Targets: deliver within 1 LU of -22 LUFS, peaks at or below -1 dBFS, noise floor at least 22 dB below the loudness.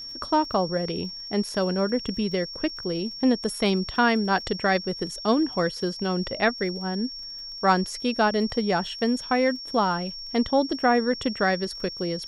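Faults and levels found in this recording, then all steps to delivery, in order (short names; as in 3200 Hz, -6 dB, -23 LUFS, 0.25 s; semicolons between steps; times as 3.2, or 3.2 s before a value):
ticks 33/s; steady tone 5500 Hz; tone level -35 dBFS; loudness -25.0 LUFS; peak -7.5 dBFS; loudness target -22.0 LUFS
-> de-click; notch 5500 Hz, Q 30; gain +3 dB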